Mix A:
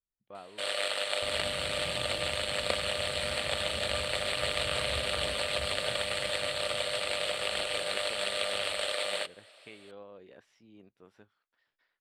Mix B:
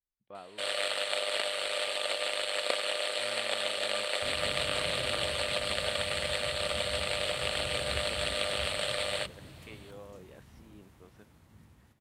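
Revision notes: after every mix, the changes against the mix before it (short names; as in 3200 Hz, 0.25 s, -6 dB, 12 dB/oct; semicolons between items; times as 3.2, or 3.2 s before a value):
second sound: entry +3.00 s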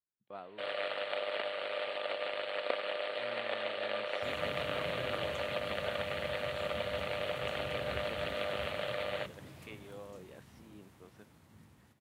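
first sound: add air absorption 460 m; master: add HPF 100 Hz 12 dB/oct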